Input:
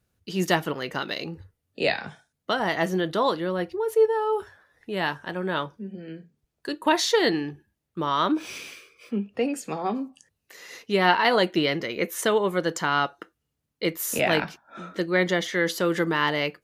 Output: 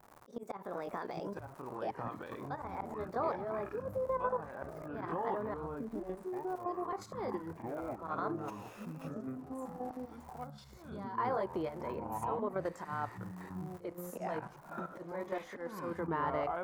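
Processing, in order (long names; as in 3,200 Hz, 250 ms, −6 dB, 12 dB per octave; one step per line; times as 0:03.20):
pitch glide at a constant tempo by +3.5 semitones ending unshifted
output level in coarse steps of 13 dB
surface crackle 210 per second −43 dBFS
volume swells 429 ms
downward compressor 3 to 1, threshold −48 dBFS, peak gain reduction 18.5 dB
healed spectral selection 0:09.30–0:10.22, 240–6,000 Hz both
delay with pitch and tempo change per echo 659 ms, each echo −6 semitones, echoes 3
drawn EQ curve 250 Hz 0 dB, 1,000 Hz +8 dB, 3,100 Hz −18 dB
gain on a spectral selection 0:10.44–0:11.17, 240–3,300 Hz −10 dB
high-shelf EQ 6,700 Hz +11 dB
level +6 dB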